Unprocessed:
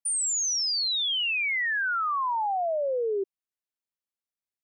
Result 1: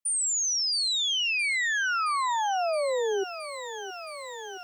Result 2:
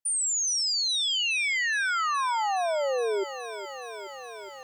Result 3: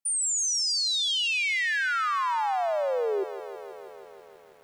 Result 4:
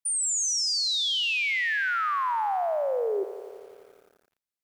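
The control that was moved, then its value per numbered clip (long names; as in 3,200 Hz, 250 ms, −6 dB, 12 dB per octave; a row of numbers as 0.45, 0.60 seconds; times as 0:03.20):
feedback echo at a low word length, delay time: 669, 418, 162, 86 milliseconds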